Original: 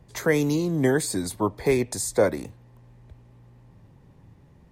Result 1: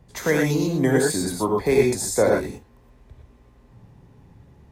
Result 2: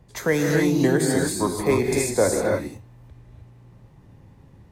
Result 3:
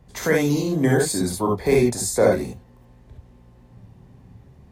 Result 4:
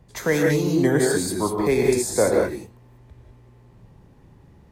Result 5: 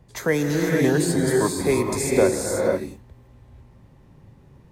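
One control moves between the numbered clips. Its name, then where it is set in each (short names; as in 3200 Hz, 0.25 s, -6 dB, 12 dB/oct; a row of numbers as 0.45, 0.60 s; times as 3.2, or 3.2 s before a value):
non-linear reverb, gate: 140, 330, 90, 220, 520 ms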